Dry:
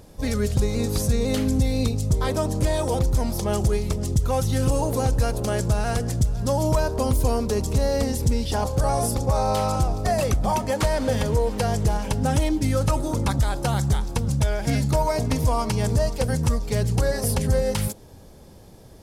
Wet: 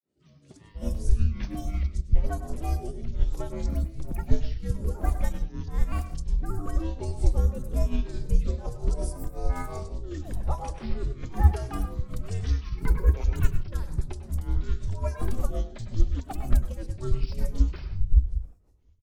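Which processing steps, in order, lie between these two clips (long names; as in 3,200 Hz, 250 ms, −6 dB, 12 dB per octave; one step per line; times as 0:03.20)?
Butterworth low-pass 11,000 Hz 96 dB per octave
low-shelf EQ 220 Hz +11 dB
granular cloud 256 ms, grains 5.5 per second, pitch spread up and down by 12 semitones
rotating-speaker cabinet horn 1.1 Hz, later 8 Hz, at 0:14.52
frequency shifter −100 Hz
three-band delay without the direct sound mids, highs, lows 30/580 ms, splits 150/3,700 Hz
on a send at −8 dB: convolution reverb RT60 0.30 s, pre-delay 95 ms
on the sum: expander for the loud parts 1.5 to 1, over −48 dBFS
level −3.5 dB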